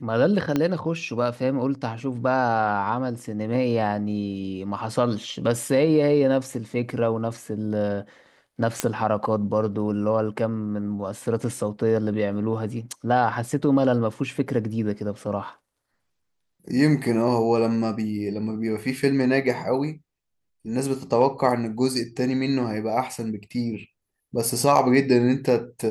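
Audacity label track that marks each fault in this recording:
0.560000	0.560000	click −10 dBFS
8.800000	8.800000	click −6 dBFS

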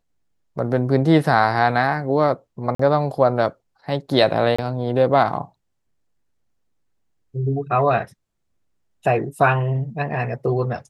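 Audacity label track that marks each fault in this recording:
2.750000	2.790000	drop-out 44 ms
4.560000	4.580000	drop-out 25 ms

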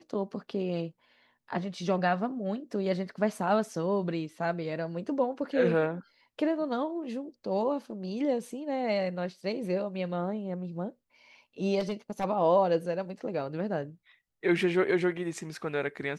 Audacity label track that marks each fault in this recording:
11.790000	12.250000	clipping −27 dBFS

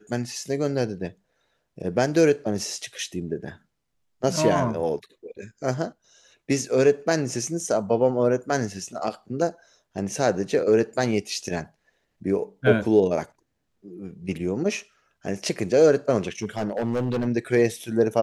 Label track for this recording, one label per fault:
16.420000	17.280000	clipping −20.5 dBFS

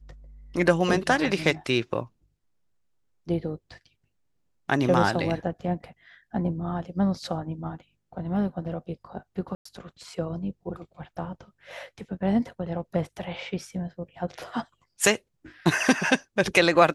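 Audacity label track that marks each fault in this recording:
9.550000	9.650000	drop-out 104 ms

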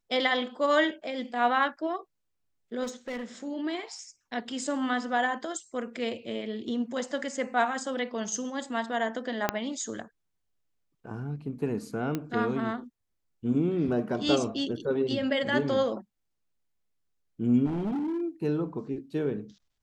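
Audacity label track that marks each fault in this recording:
2.830000	3.240000	clipping −31 dBFS
9.490000	9.490000	click −9 dBFS
12.150000	12.150000	click −17 dBFS
17.650000	18.210000	clipping −27.5 dBFS

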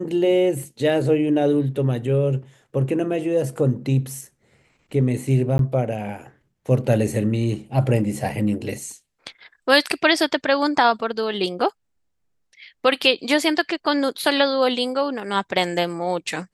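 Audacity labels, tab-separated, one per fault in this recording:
5.580000	5.590000	drop-out 12 ms

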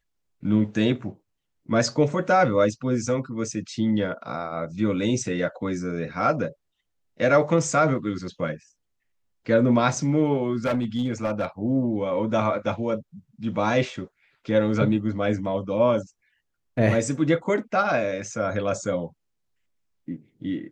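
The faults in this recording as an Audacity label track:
10.650000	11.450000	clipping −19.5 dBFS

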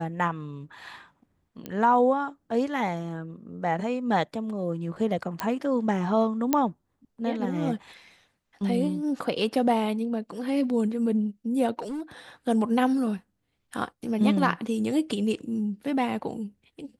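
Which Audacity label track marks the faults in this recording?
1.660000	1.660000	click −20 dBFS
5.400000	5.400000	click −12 dBFS
6.530000	6.530000	click −8 dBFS
11.790000	12.010000	clipping −29 dBFS

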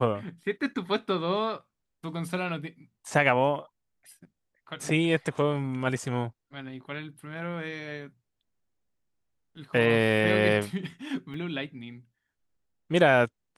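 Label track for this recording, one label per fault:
11.340000	11.340000	drop-out 3.4 ms

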